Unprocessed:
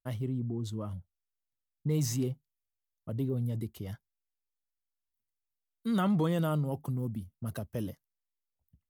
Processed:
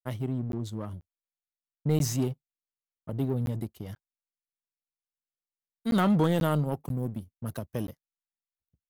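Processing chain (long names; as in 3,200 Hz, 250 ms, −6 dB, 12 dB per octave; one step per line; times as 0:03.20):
power curve on the samples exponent 1.4
regular buffer underruns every 0.49 s, samples 512, zero, from 0:00.52
level +6.5 dB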